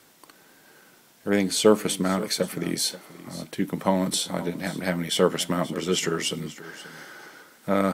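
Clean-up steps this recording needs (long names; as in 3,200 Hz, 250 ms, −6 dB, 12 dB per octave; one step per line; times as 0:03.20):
echo removal 531 ms −17 dB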